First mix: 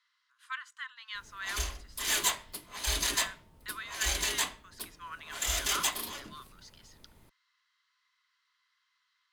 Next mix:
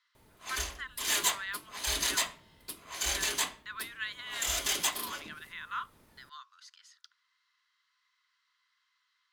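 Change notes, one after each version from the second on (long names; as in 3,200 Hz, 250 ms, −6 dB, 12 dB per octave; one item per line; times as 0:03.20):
background: entry −1.00 s
master: add low-shelf EQ 63 Hz −11.5 dB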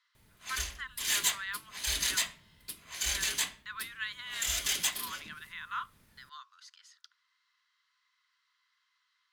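background: add flat-topped bell 580 Hz −8 dB 2.5 octaves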